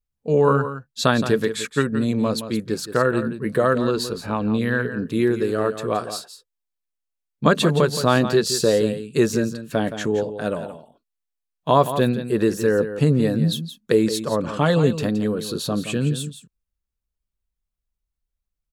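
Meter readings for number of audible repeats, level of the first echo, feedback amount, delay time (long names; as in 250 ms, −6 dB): 1, −11.0 dB, repeats not evenly spaced, 170 ms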